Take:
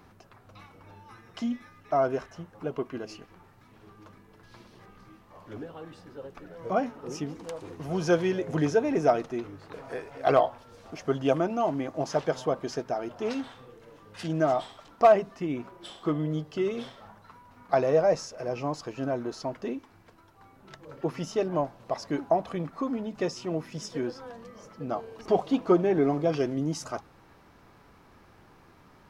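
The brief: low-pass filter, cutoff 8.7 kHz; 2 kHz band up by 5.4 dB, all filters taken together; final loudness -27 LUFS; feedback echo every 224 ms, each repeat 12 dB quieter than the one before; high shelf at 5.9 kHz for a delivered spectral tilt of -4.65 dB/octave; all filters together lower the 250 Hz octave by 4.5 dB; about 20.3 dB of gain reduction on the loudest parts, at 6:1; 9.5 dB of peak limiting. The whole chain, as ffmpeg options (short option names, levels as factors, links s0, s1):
-af "lowpass=8700,equalizer=f=250:t=o:g=-6.5,equalizer=f=2000:t=o:g=7,highshelf=f=5900:g=3.5,acompressor=threshold=0.0158:ratio=6,alimiter=level_in=2.11:limit=0.0631:level=0:latency=1,volume=0.473,aecho=1:1:224|448|672:0.251|0.0628|0.0157,volume=5.96"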